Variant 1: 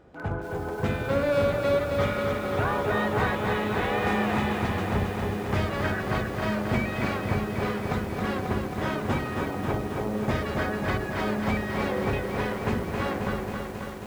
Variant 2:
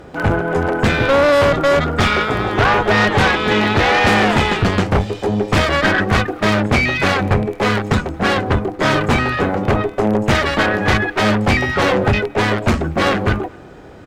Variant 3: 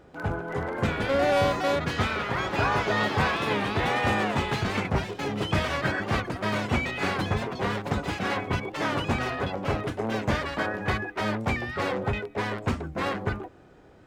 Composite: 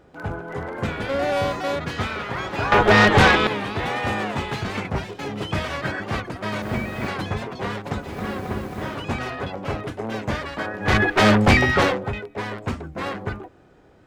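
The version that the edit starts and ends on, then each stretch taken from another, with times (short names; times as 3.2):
3
2.72–3.47 from 2
6.62–7.08 from 1
8.07–8.95 from 1, crossfade 0.24 s
10.91–11.87 from 2, crossfade 0.24 s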